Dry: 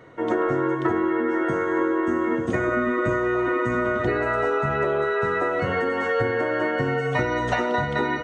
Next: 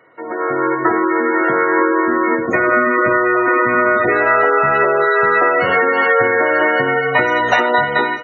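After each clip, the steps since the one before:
gate on every frequency bin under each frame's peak −25 dB strong
high-pass filter 770 Hz 6 dB per octave
automatic gain control gain up to 13 dB
level +1.5 dB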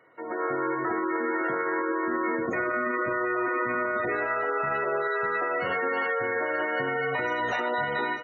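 brickwall limiter −11 dBFS, peak gain reduction 9.5 dB
level −8.5 dB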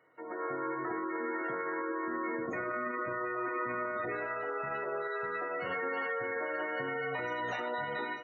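rectangular room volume 380 cubic metres, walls furnished, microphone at 0.51 metres
level −8 dB

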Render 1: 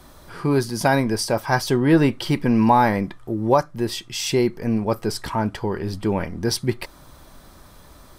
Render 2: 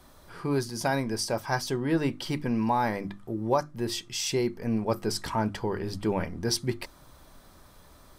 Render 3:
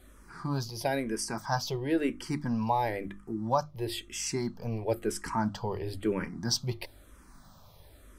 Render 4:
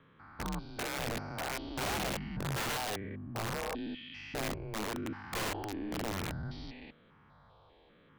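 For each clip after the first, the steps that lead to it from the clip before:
mains-hum notches 50/100/150/200/250/300/350 Hz; dynamic equaliser 6,300 Hz, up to +4 dB, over −43 dBFS, Q 1.3; speech leveller within 3 dB 0.5 s; level −7.5 dB
mains hum 50 Hz, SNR 26 dB; frequency shifter mixed with the dry sound −1 Hz
spectrum averaged block by block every 200 ms; single-sideband voice off tune −100 Hz 160–3,600 Hz; wrap-around overflow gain 30 dB

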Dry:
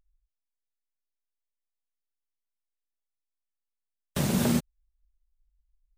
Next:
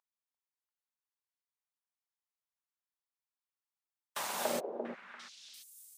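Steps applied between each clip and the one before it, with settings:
echo through a band-pass that steps 344 ms, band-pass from 610 Hz, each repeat 1.4 octaves, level −2 dB
high-pass filter sweep 950 Hz → 190 Hz, 0:04.33–0:04.94
level −5.5 dB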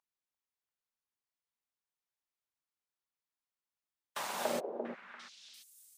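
high-shelf EQ 6,100 Hz −6 dB

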